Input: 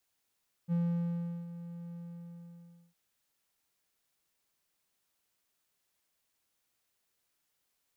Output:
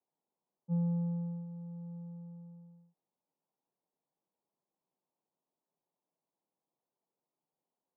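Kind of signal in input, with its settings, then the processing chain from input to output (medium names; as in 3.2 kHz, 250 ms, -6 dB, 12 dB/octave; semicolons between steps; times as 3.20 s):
ADSR triangle 171 Hz, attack 42 ms, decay 738 ms, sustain -14.5 dB, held 1.27 s, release 989 ms -24.5 dBFS
elliptic band-pass 150–940 Hz, stop band 40 dB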